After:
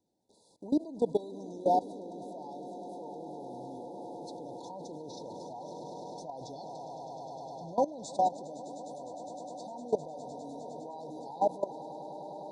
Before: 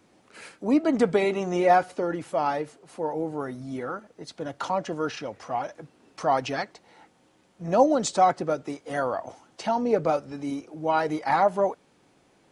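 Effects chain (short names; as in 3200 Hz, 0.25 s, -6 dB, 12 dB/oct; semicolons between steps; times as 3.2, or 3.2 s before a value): swelling echo 0.102 s, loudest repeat 8, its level -14.5 dB; level quantiser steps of 19 dB; FFT band-reject 1000–3400 Hz; gain -4.5 dB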